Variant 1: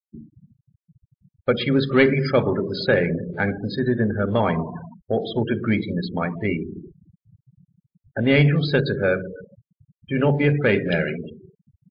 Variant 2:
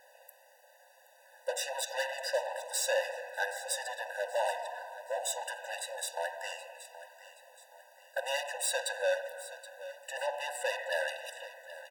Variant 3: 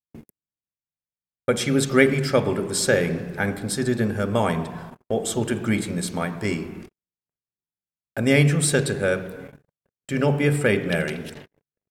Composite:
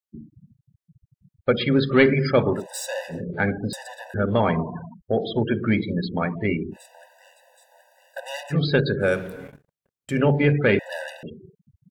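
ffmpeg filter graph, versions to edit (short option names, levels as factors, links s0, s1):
-filter_complex "[1:a]asplit=4[s0][s1][s2][s3];[0:a]asplit=6[s4][s5][s6][s7][s8][s9];[s4]atrim=end=2.67[s10];[s0]atrim=start=2.51:end=3.24[s11];[s5]atrim=start=3.08:end=3.732[s12];[s1]atrim=start=3.728:end=4.142[s13];[s6]atrim=start=4.138:end=6.77[s14];[s2]atrim=start=6.71:end=8.56[s15];[s7]atrim=start=8.5:end=9.15[s16];[2:a]atrim=start=8.99:end=10.22[s17];[s8]atrim=start=10.06:end=10.792[s18];[s3]atrim=start=10.788:end=11.232[s19];[s9]atrim=start=11.228[s20];[s10][s11]acrossfade=d=0.16:c1=tri:c2=tri[s21];[s21][s12]acrossfade=d=0.16:c1=tri:c2=tri[s22];[s22][s13]acrossfade=d=0.004:c1=hsin:c2=hsin[s23];[s23][s14]acrossfade=d=0.004:c1=hsin:c2=hsin[s24];[s24][s15]acrossfade=d=0.06:c1=tri:c2=tri[s25];[s25][s16]acrossfade=d=0.06:c1=tri:c2=tri[s26];[s26][s17]acrossfade=d=0.16:c1=tri:c2=tri[s27];[s27][s18]acrossfade=d=0.16:c1=tri:c2=tri[s28];[s28][s19]acrossfade=d=0.004:c1=hsin:c2=hsin[s29];[s29][s20]acrossfade=d=0.004:c1=hsin:c2=hsin"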